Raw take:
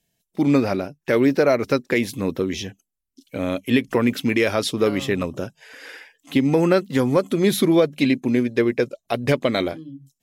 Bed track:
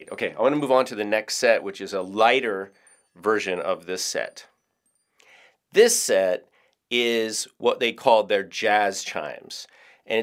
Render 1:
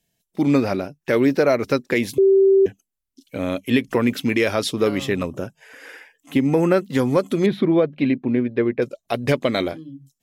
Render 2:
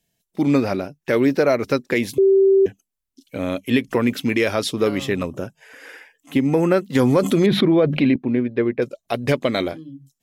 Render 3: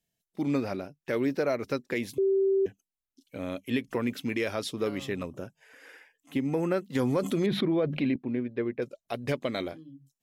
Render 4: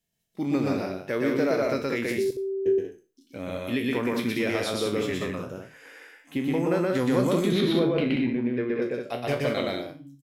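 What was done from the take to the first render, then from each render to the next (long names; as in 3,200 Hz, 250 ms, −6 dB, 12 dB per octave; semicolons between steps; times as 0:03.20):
0:02.18–0:02.66: beep over 388 Hz −10.5 dBFS; 0:05.27–0:06.83: parametric band 4,200 Hz −8 dB 0.83 octaves; 0:07.46–0:08.82: high-frequency loss of the air 400 metres
0:06.95–0:08.16: envelope flattener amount 70%
level −10.5 dB
peak hold with a decay on every bin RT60 0.33 s; loudspeakers that aren't time-aligned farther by 42 metres −1 dB, 64 metres −5 dB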